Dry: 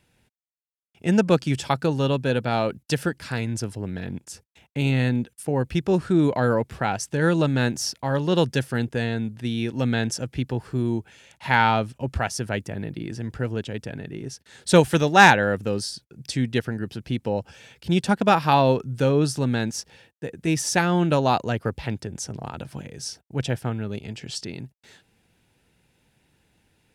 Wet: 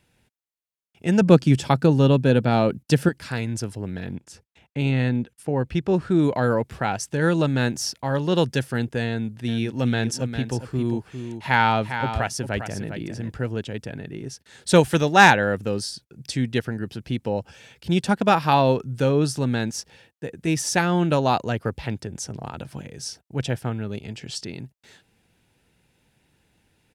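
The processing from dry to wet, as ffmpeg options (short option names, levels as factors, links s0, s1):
-filter_complex "[0:a]asettb=1/sr,asplit=3[s0][s1][s2];[s0]atrim=end=1.214[s3];[s1]atrim=start=1.21:end=3.09,asetpts=PTS-STARTPTS,afade=t=in:d=0.004:c=qsin,afade=t=out:st=1.876:d=0.004:c=qsin,equalizer=f=190:w=0.45:g=7.5[s4];[s2]atrim=start=3.086[s5];[s3][s4]acrossfade=d=0.004:c1=hsin:c2=qsin[s6];[s6][s5]acrossfade=d=0.004:c1=qsin:c2=hsin,asettb=1/sr,asplit=3[s7][s8][s9];[s7]atrim=end=4.154[s10];[s8]atrim=start=4.15:end=6.12,asetpts=PTS-STARTPTS,afade=t=in:d=0.004:c=qsin,afade=t=out:st=1.966:d=0.004:c=qsin,highshelf=f=6100:g=-11[s11];[s9]atrim=start=6.116[s12];[s10][s11]acrossfade=d=0.004:c1=hsin:c2=qsin[s13];[s13][s12]acrossfade=d=0.004:c1=qsin:c2=hsin,asplit=3[s14][s15][s16];[s14]afade=t=out:st=9.47:d=0.02[s17];[s15]aecho=1:1:403:0.355,afade=t=in:st=9.47:d=0.02,afade=t=out:st=13.3:d=0.02[s18];[s16]afade=t=in:st=13.3:d=0.02[s19];[s17][s18][s19]amix=inputs=3:normalize=0"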